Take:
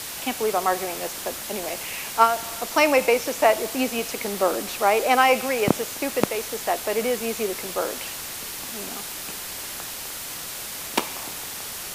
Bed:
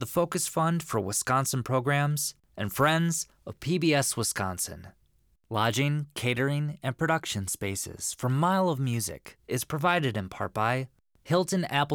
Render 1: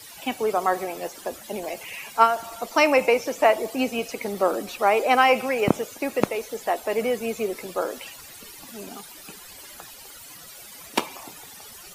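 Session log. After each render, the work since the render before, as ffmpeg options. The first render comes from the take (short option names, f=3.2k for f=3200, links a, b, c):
-af "afftdn=nr=15:nf=-34"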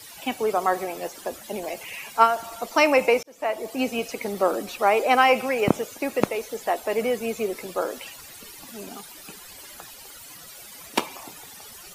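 -filter_complex "[0:a]asplit=2[a][b];[a]atrim=end=3.23,asetpts=PTS-STARTPTS,afade=t=out:st=3.226:d=0.004:c=hsin[c];[b]atrim=start=3.23,asetpts=PTS-STARTPTS,afade=t=in:d=0.65[d];[c][d]concat=n=2:v=0:a=1"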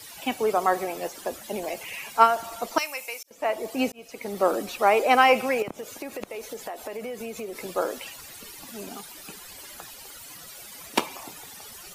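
-filter_complex "[0:a]asettb=1/sr,asplit=3[a][b][c];[a]atrim=end=2.784[d];[b]atrim=start=2.78:end=3.31,asetpts=PTS-STARTPTS,afade=t=in:d=0.004:c=qsin,afade=t=out:st=0.526:d=0.004:c=qsin,aderivative[e];[c]atrim=start=3.306[f];[d][e]acrossfade=d=0.004:c1=hsin:c2=qsin[g];[g][f]acrossfade=d=0.004:c1=qsin:c2=hsin,asettb=1/sr,asplit=3[h][i][j];[h]atrim=end=5.624[k];[i]atrim=start=5.62:end=7.64,asetpts=PTS-STARTPTS,afade=t=in:d=0.004:c=qsin,afade=t=out:st=2.016:d=0.004:c=qsin,acompressor=threshold=-31dB:ratio=8:attack=3.2:release=140:knee=1:detection=peak[l];[j]atrim=start=7.636[m];[k][l]acrossfade=d=0.004:c1=hsin:c2=qsin[n];[n][m]acrossfade=d=0.004:c1=qsin:c2=hsin,asplit=2[o][p];[o]atrim=end=3.92,asetpts=PTS-STARTPTS,afade=t=out:st=3.916:d=0.004:c=hsin[q];[p]atrim=start=3.92,asetpts=PTS-STARTPTS,afade=t=in:d=0.56[r];[q][r]concat=n=2:v=0:a=1"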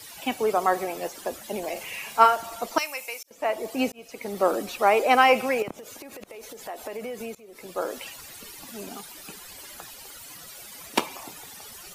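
-filter_complex "[0:a]asettb=1/sr,asplit=3[a][b][c];[a]atrim=end=1.724[d];[b]atrim=start=1.72:end=2.36,asetpts=PTS-STARTPTS,afade=t=in:d=0.004:c=qsin,afade=t=out:st=0.636:d=0.004:c=qsin,asplit=2[e][f];[f]adelay=37,volume=-6dB[g];[e][g]amix=inputs=2:normalize=0,atrim=end_sample=28224[h];[c]atrim=start=2.356[i];[d][h]acrossfade=d=0.004:c1=hsin:c2=qsin[j];[j][i]acrossfade=d=0.004:c1=qsin:c2=hsin,asplit=3[k][l][m];[k]afade=t=out:st=5.75:d=0.02[n];[l]acompressor=threshold=-38dB:ratio=6:attack=3.2:release=140:knee=1:detection=peak,afade=t=in:st=5.75:d=0.02,afade=t=out:st=6.67:d=0.02[o];[m]afade=t=in:st=6.67:d=0.02[p];[n][o][p]amix=inputs=3:normalize=0,asplit=2[q][r];[q]atrim=end=7.35,asetpts=PTS-STARTPTS,afade=t=out:st=7.346:d=0.004:c=hsin:silence=0.0841395[s];[r]atrim=start=7.35,asetpts=PTS-STARTPTS,afade=t=in:d=0.66:silence=0.0841395[t];[s][t]concat=n=2:v=0:a=1"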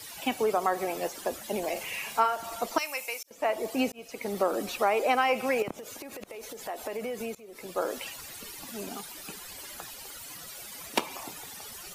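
-af "acompressor=threshold=-23dB:ratio=3"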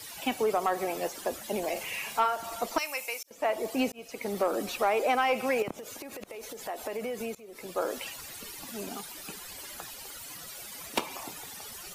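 -af "asoftclip=type=tanh:threshold=-15dB"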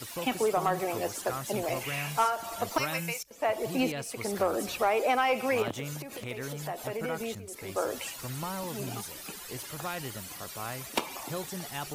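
-filter_complex "[1:a]volume=-12dB[a];[0:a][a]amix=inputs=2:normalize=0"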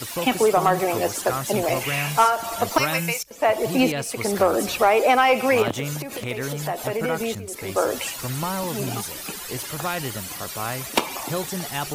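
-af "volume=9dB"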